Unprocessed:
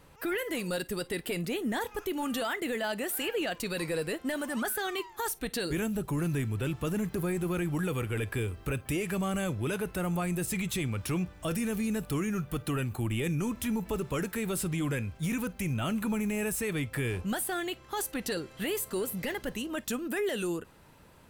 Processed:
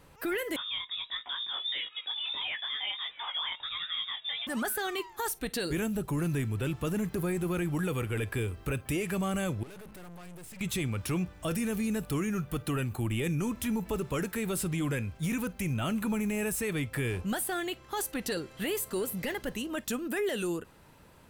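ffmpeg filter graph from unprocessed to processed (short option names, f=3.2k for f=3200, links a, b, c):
-filter_complex "[0:a]asettb=1/sr,asplit=3[a][b][c];[a]atrim=end=0.564[d];[b]atrim=start=0.56:end=4.47,asetpts=PTS-STARTPTS,afade=t=in:d=0.004:c=qsin,afade=t=out:st=3.906:d=0.004:c=qsin,lowpass=f=3.2k:t=q:w=0.5098,lowpass=f=3.2k:t=q:w=0.6013,lowpass=f=3.2k:t=q:w=0.9,lowpass=f=3.2k:t=q:w=2.563,afreqshift=-3800,flanger=delay=16:depth=7.1:speed=1.5[e];[c]atrim=start=4.466[f];[d][e]acrossfade=d=0.004:c1=hsin:c2=qsin[g];[g][f]acrossfade=d=0.004:c1=qsin:c2=hsin,asettb=1/sr,asplit=3[h][i][j];[h]atrim=end=9.634[k];[i]atrim=start=9.63:end=10.61,asetpts=PTS-STARTPTS,afade=t=in:d=0.004:c=qsin,afade=t=out:st=0.976:d=0.004:c=qsin,bandreject=f=70.03:t=h:w=4,bandreject=f=140.06:t=h:w=4,bandreject=f=210.09:t=h:w=4,bandreject=f=280.12:t=h:w=4,acompressor=threshold=-34dB:ratio=6:attack=3.2:release=140:knee=1:detection=peak,aeval=exprs='(tanh(200*val(0)+0.6)-tanh(0.6))/200':c=same[l];[j]atrim=start=10.606[m];[k][l]acrossfade=d=0.004:c1=hsin:c2=qsin[n];[n][m]acrossfade=d=0.004:c1=qsin:c2=hsin"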